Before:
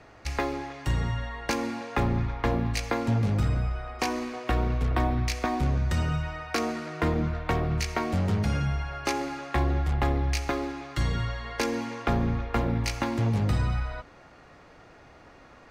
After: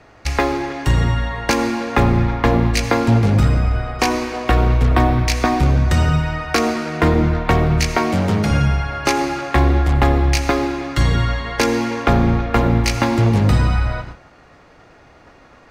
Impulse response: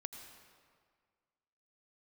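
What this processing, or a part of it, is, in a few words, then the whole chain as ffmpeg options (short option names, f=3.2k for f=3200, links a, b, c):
keyed gated reverb: -filter_complex "[0:a]asplit=3[a][b][c];[1:a]atrim=start_sample=2205[d];[b][d]afir=irnorm=-1:irlink=0[e];[c]apad=whole_len=692545[f];[e][f]sidechaingate=range=-33dB:threshold=-48dB:ratio=16:detection=peak,volume=5.5dB[g];[a][g]amix=inputs=2:normalize=0,asettb=1/sr,asplit=3[h][i][j];[h]atrim=end=7.974[k];[i]atrim=start=7.97:end=8.51,asetpts=PTS-STARTPTS,afade=t=in:d=0.004:c=qsin,afade=t=out:st=0.536:d=0.004:c=qsin,highpass=120[l];[j]atrim=start=8.506[m];[k][l]acrossfade=d=0.004:c1=hsin:c2=qsin[n];[n][m]acrossfade=d=0.004:c1=qsin:c2=hsin,volume=4dB"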